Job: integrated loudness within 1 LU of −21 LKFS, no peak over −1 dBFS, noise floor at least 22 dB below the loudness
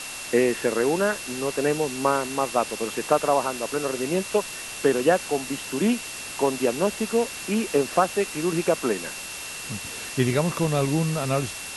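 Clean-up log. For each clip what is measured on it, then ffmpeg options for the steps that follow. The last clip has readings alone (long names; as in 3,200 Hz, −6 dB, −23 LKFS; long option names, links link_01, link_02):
interfering tone 2,700 Hz; level of the tone −39 dBFS; background noise floor −36 dBFS; target noise floor −47 dBFS; integrated loudness −24.5 LKFS; sample peak −5.0 dBFS; target loudness −21.0 LKFS
→ -af "bandreject=frequency=2700:width=30"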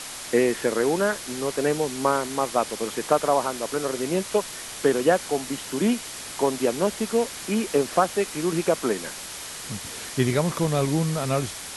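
interfering tone none found; background noise floor −37 dBFS; target noise floor −47 dBFS
→ -af "afftdn=noise_reduction=10:noise_floor=-37"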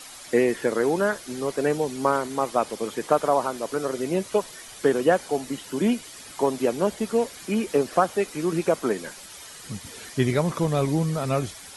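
background noise floor −43 dBFS; target noise floor −47 dBFS
→ -af "afftdn=noise_reduction=6:noise_floor=-43"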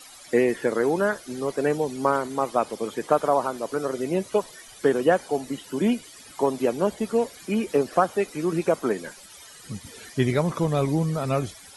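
background noise floor −47 dBFS; integrated loudness −25.0 LKFS; sample peak −5.5 dBFS; target loudness −21.0 LKFS
→ -af "volume=4dB"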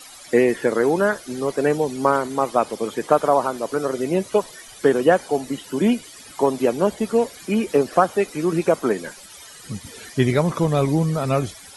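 integrated loudness −21.0 LKFS; sample peak −1.5 dBFS; background noise floor −43 dBFS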